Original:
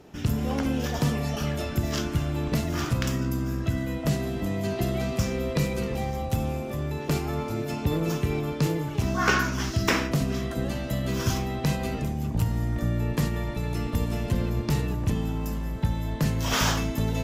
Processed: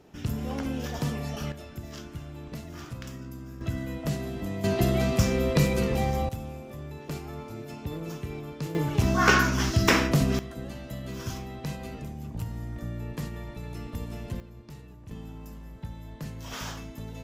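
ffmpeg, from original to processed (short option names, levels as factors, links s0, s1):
-af "asetnsamples=n=441:p=0,asendcmd='1.52 volume volume -13dB;3.61 volume volume -4.5dB;4.64 volume volume 3dB;6.29 volume volume -9.5dB;8.75 volume volume 2.5dB;10.39 volume volume -9dB;14.4 volume volume -20dB;15.11 volume volume -13dB',volume=0.562"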